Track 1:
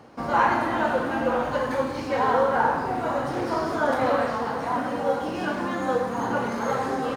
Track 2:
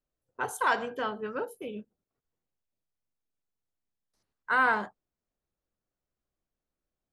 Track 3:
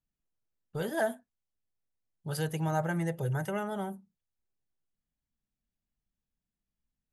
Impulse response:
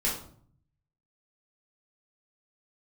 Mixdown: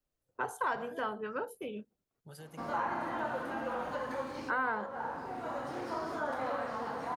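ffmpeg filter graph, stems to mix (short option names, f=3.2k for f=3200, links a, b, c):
-filter_complex "[0:a]adelay=2400,volume=-9dB[a];[1:a]volume=0.5dB,asplit=2[b][c];[2:a]acompressor=threshold=-33dB:ratio=6,volume=-12dB[d];[c]apad=whole_len=421609[e];[a][e]sidechaincompress=threshold=-31dB:ratio=4:attack=16:release=1180[f];[f][b][d]amix=inputs=3:normalize=0,acrossover=split=170|750|1600[g][h][i][j];[g]acompressor=threshold=-57dB:ratio=4[k];[h]acompressor=threshold=-39dB:ratio=4[l];[i]acompressor=threshold=-34dB:ratio=4[m];[j]acompressor=threshold=-50dB:ratio=4[n];[k][l][m][n]amix=inputs=4:normalize=0"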